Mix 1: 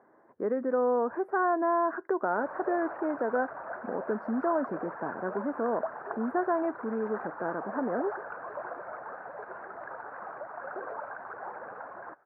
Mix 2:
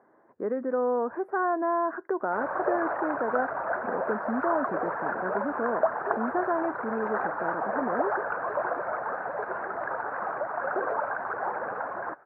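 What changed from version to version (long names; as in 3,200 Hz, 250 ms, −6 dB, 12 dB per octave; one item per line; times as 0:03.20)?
background +9.5 dB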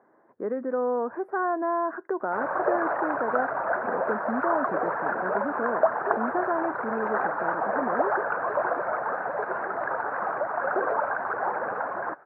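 background +3.0 dB
master: add high-pass filter 89 Hz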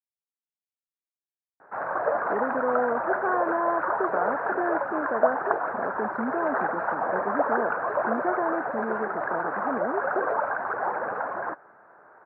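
speech: entry +1.90 s
background: entry −0.60 s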